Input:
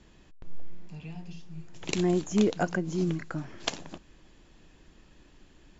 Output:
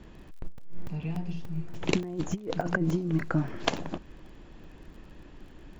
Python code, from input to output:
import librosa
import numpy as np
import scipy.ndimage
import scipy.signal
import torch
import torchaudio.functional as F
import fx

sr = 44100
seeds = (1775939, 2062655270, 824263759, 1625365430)

y = fx.lowpass(x, sr, hz=1600.0, slope=6)
y = fx.over_compress(y, sr, threshold_db=-31.0, ratio=-0.5)
y = fx.dmg_crackle(y, sr, seeds[0], per_s=32.0, level_db=-52.0)
y = fx.buffer_crackle(y, sr, first_s=0.58, period_s=0.29, block=128, kind='zero')
y = y * 10.0 ** (4.5 / 20.0)